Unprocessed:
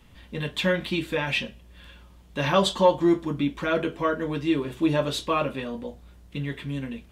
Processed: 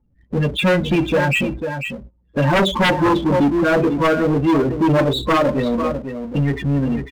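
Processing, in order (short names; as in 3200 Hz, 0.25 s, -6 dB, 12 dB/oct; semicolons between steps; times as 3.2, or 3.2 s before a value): gate -42 dBFS, range -41 dB; high shelf 3300 Hz -10 dB; loudest bins only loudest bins 16; on a send: echo 0.496 s -12 dB; on the sum: sine folder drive 12 dB, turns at -7.5 dBFS; power-law curve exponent 0.7; gain -4 dB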